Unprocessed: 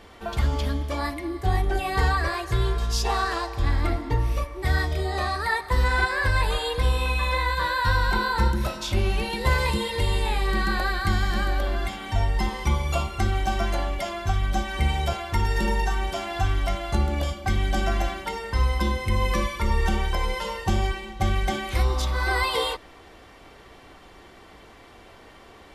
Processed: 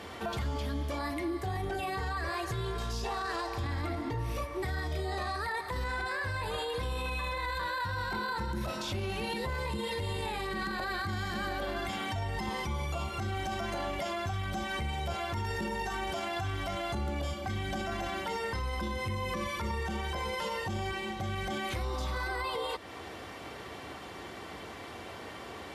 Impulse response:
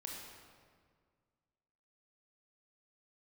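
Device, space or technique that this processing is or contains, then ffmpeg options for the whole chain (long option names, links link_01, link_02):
podcast mastering chain: -af "highpass=frequency=72:width=0.5412,highpass=frequency=72:width=1.3066,deesser=0.9,acompressor=threshold=-38dB:ratio=2.5,alimiter=level_in=7.5dB:limit=-24dB:level=0:latency=1:release=14,volume=-7.5dB,volume=5.5dB" -ar 32000 -c:a libmp3lame -b:a 96k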